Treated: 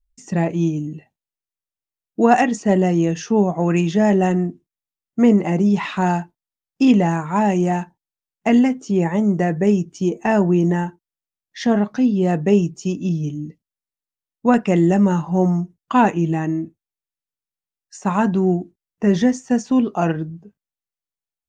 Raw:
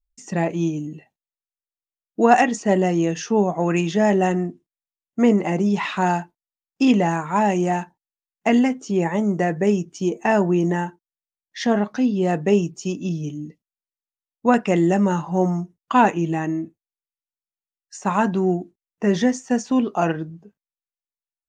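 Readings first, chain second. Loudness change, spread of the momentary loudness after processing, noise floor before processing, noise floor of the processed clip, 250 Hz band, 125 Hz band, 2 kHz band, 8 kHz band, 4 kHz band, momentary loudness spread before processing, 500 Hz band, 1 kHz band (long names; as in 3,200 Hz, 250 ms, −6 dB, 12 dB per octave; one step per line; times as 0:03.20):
+2.0 dB, 10 LU, below −85 dBFS, below −85 dBFS, +3.5 dB, +4.5 dB, −1.0 dB, −1.0 dB, −1.0 dB, 11 LU, +1.0 dB, −0.5 dB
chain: low-shelf EQ 220 Hz +9 dB
level −1 dB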